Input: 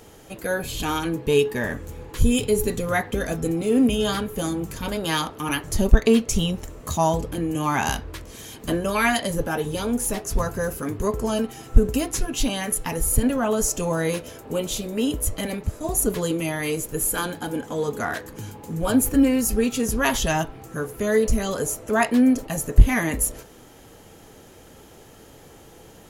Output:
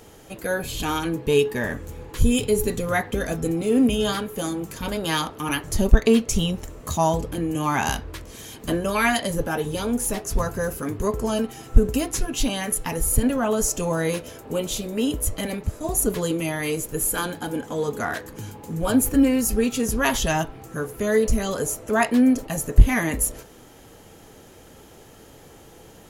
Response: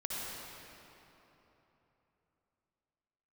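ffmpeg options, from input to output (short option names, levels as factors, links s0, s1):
-filter_complex "[0:a]asettb=1/sr,asplit=3[s0][s1][s2];[s0]atrim=end=4.124[s3];[s1]atrim=start=4.12:end=4.8,asetpts=PTS-STARTPTS,afade=t=in:d=0.004:c=qsin,afade=t=out:st=0.676:d=0.004:c=qsin,lowshelf=f=110:g=-11[s4];[s2]atrim=start=4.796[s5];[s3][s4]acrossfade=d=0.004:c1=hsin:c2=qsin[s6];[s6][s5]acrossfade=d=0.004:c1=qsin:c2=hsin"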